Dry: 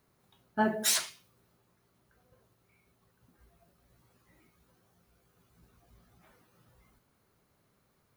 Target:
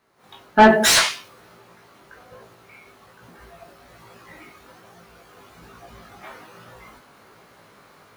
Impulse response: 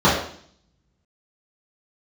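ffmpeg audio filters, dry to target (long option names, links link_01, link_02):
-filter_complex "[0:a]flanger=delay=17.5:depth=2.5:speed=1.2,asplit=2[link_01][link_02];[link_02]highpass=frequency=720:poles=1,volume=19dB,asoftclip=type=tanh:threshold=-16.5dB[link_03];[link_01][link_03]amix=inputs=2:normalize=0,lowpass=frequency=2500:poles=1,volume=-6dB,dynaudnorm=framelen=160:gausssize=3:maxgain=16.5dB"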